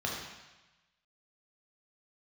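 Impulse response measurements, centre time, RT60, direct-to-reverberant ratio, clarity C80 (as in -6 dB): 64 ms, 1.1 s, -3.0 dB, 3.5 dB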